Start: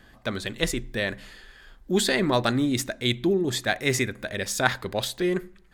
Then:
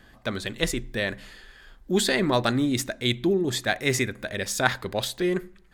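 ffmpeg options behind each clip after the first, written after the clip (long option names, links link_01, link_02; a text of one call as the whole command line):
ffmpeg -i in.wav -af anull out.wav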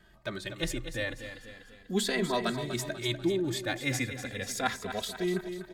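ffmpeg -i in.wav -filter_complex "[0:a]asplit=2[link_01][link_02];[link_02]aecho=0:1:245|490|735|980|1225|1470:0.316|0.161|0.0823|0.0419|0.0214|0.0109[link_03];[link_01][link_03]amix=inputs=2:normalize=0,asplit=2[link_04][link_05];[link_05]adelay=2.7,afreqshift=-0.36[link_06];[link_04][link_06]amix=inputs=2:normalize=1,volume=-4dB" out.wav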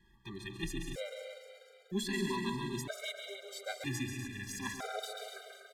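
ffmpeg -i in.wav -filter_complex "[0:a]asplit=2[link_01][link_02];[link_02]aecho=0:1:137|183.7|285.7:0.447|0.355|0.316[link_03];[link_01][link_03]amix=inputs=2:normalize=0,afftfilt=real='re*gt(sin(2*PI*0.52*pts/sr)*(1-2*mod(floor(b*sr/1024/400),2)),0)':imag='im*gt(sin(2*PI*0.52*pts/sr)*(1-2*mod(floor(b*sr/1024/400),2)),0)':win_size=1024:overlap=0.75,volume=-5dB" out.wav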